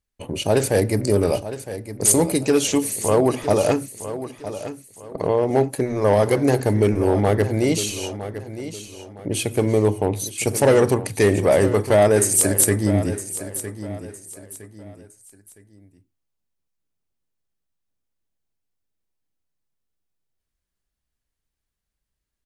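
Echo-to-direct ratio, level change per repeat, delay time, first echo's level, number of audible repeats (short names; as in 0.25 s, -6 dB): -12.0 dB, -9.5 dB, 0.961 s, -12.5 dB, 3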